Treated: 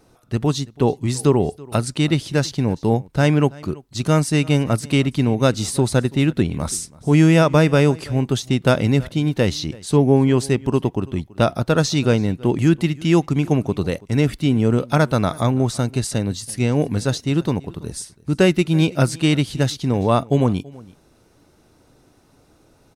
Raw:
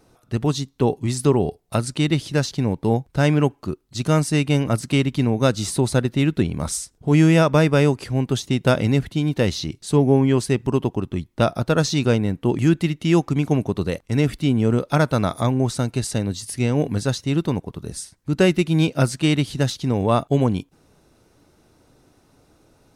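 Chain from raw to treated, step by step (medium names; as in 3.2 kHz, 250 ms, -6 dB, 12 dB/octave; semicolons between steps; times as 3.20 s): delay 331 ms -22.5 dB; trim +1.5 dB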